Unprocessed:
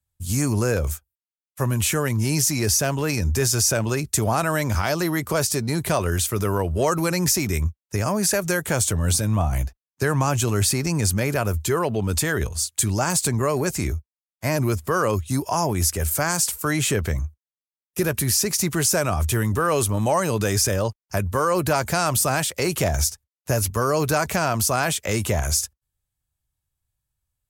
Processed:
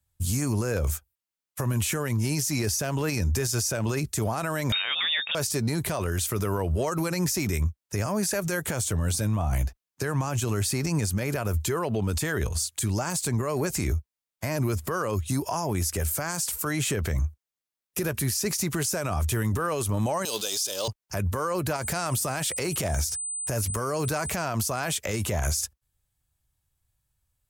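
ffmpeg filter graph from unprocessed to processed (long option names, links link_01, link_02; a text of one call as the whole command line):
ffmpeg -i in.wav -filter_complex "[0:a]asettb=1/sr,asplit=3[link_01][link_02][link_03];[link_01]atrim=end=4.724[link_04];[link_02]atrim=start=4.72:end=5.35,asetpts=PTS-STARTPTS,afade=type=in:duration=0.004:curve=qsin,afade=type=out:start_time=0.626:duration=0.004:curve=qsin,equalizer=frequency=2600:width=0.8:gain=9.5,lowpass=frequency=3200:width_type=q:width=0.5098,lowpass=frequency=3200:width_type=q:width=0.6013,lowpass=frequency=3200:width_type=q:width=0.9,lowpass=frequency=3200:width_type=q:width=2.563,afreqshift=-3800[link_05];[link_03]atrim=start=5.346[link_06];[link_04][link_05]acrossfade=duration=0.004:curve1=hsin:curve2=qsin[link_07];[link_07][link_06]acrossfade=duration=0.004:curve1=qsin:curve2=hsin,asettb=1/sr,asplit=3[link_08][link_09][link_10];[link_08]atrim=end=20.254[link_11];[link_09]atrim=start=20.25:end=20.88,asetpts=PTS-STARTPTS,afade=type=in:duration=0.004:curve=qsin,afade=type=out:start_time=0.626:duration=0.004:curve=qsin,aeval=exprs='val(0)+0.5*0.0237*sgn(val(0))':channel_layout=same,highpass=430,highshelf=frequency=2600:width_type=q:width=3:gain=10[link_12];[link_10]atrim=start=20.876[link_13];[link_11][link_12]acrossfade=duration=0.004:curve1=hsin:curve2=qsin[link_14];[link_14][link_13]acrossfade=duration=0.004:curve1=qsin:curve2=hsin,asettb=1/sr,asplit=3[link_15][link_16][link_17];[link_15]atrim=end=21.764[link_18];[link_16]atrim=start=21.76:end=24.32,asetpts=PTS-STARTPTS,afade=type=in:duration=0.004:curve=qsin,afade=type=out:start_time=2.556:duration=0.004:curve=qsin,aeval=exprs='val(0)+0.02*sin(2*PI*8100*n/s)':channel_layout=same,acompressor=threshold=-22dB:ratio=6:attack=3.2:release=140:knee=1:detection=peak[link_19];[link_17]atrim=start=24.316[link_20];[link_18][link_19]acrossfade=duration=0.004:curve1=hsin:curve2=qsin[link_21];[link_21][link_20]acrossfade=duration=0.004:curve1=qsin:curve2=hsin,acompressor=threshold=-25dB:ratio=6,alimiter=limit=-22.5dB:level=0:latency=1:release=53,volume=4.5dB" out.wav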